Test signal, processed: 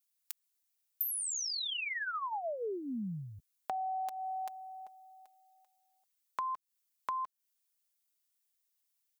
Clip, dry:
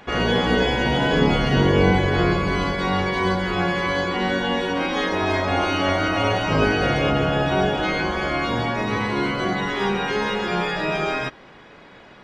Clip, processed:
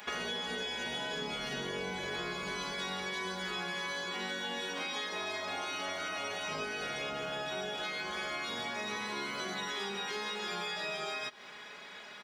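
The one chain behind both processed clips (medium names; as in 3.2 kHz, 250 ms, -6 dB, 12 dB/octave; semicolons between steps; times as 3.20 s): tilt EQ +4 dB/octave; comb 4.8 ms, depth 49%; dynamic bell 1.8 kHz, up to -4 dB, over -30 dBFS, Q 1.1; compression 16:1, threshold -29 dBFS; trim -5 dB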